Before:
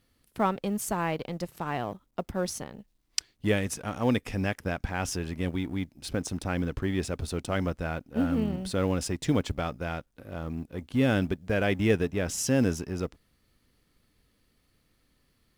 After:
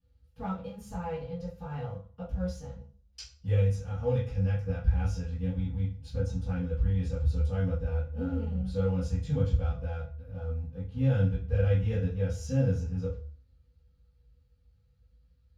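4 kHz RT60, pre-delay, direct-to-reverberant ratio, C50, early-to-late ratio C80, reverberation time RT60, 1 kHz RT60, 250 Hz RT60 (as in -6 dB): 0.40 s, 3 ms, -18.5 dB, 6.5 dB, 12.0 dB, 0.40 s, 0.45 s, 0.55 s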